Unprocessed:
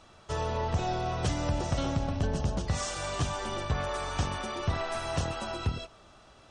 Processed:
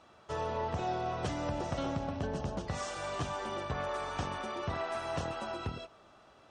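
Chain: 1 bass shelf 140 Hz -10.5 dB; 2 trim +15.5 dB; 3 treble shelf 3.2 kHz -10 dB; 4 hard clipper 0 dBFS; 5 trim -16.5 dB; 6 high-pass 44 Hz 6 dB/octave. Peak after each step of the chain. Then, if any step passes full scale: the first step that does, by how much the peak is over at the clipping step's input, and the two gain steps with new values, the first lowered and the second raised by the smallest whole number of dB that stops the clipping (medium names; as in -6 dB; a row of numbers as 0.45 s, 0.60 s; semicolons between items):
-20.0 dBFS, -4.5 dBFS, -5.0 dBFS, -5.0 dBFS, -21.5 dBFS, -21.5 dBFS; nothing clips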